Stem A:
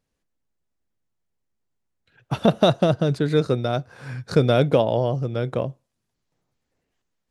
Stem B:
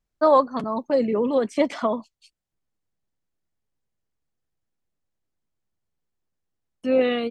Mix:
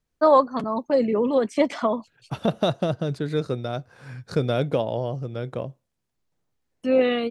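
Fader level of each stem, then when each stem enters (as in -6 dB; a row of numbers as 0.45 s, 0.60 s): -5.5 dB, +0.5 dB; 0.00 s, 0.00 s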